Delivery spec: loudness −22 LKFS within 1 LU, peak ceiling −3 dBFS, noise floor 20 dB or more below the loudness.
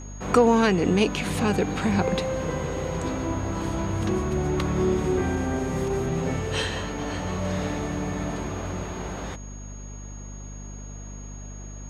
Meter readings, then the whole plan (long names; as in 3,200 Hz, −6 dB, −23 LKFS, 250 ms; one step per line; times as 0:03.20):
mains hum 50 Hz; hum harmonics up to 250 Hz; level of the hum −36 dBFS; interfering tone 6,600 Hz; level of the tone −45 dBFS; integrated loudness −26.0 LKFS; sample peak −5.5 dBFS; target loudness −22.0 LKFS
→ hum removal 50 Hz, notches 5
notch filter 6,600 Hz, Q 30
level +4 dB
brickwall limiter −3 dBFS